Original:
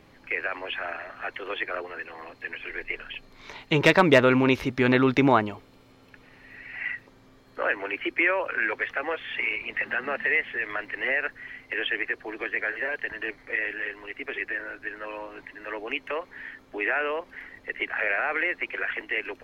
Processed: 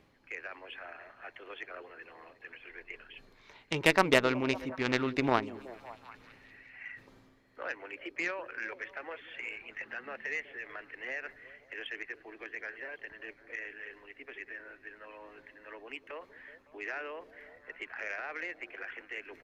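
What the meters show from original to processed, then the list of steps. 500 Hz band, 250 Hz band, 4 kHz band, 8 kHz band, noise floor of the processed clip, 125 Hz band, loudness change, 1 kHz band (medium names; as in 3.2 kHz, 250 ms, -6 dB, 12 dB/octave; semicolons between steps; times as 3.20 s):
-9.5 dB, -10.5 dB, -6.5 dB, no reading, -62 dBFS, -11.0 dB, -9.0 dB, -8.5 dB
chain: reverse; upward compressor, threshold -33 dBFS; reverse; Chebyshev shaper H 3 -13 dB, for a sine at -5.5 dBFS; repeats whose band climbs or falls 186 ms, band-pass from 290 Hz, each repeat 0.7 oct, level -11 dB; resampled via 32 kHz; trim -4 dB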